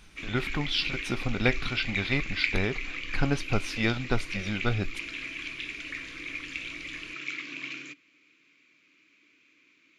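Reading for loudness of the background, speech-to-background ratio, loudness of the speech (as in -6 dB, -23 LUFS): -35.0 LUFS, 4.5 dB, -30.5 LUFS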